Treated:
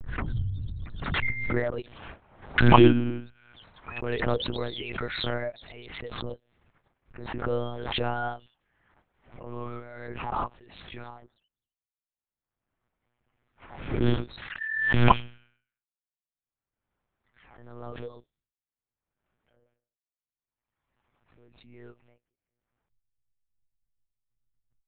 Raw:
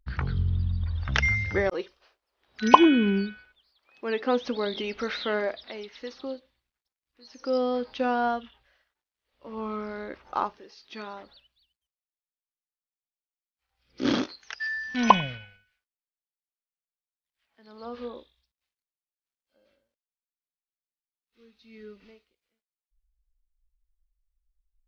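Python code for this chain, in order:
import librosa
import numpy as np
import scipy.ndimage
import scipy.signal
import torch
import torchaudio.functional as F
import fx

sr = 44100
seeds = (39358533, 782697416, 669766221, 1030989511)

y = fx.env_lowpass(x, sr, base_hz=1500.0, full_db=-26.0)
y = fx.dereverb_blind(y, sr, rt60_s=1.9)
y = fx.peak_eq(y, sr, hz=310.0, db=10.5, octaves=0.22)
y = fx.lpc_monotone(y, sr, seeds[0], pitch_hz=120.0, order=8)
y = fx.pre_swell(y, sr, db_per_s=44.0)
y = y * 10.0 ** (-2.5 / 20.0)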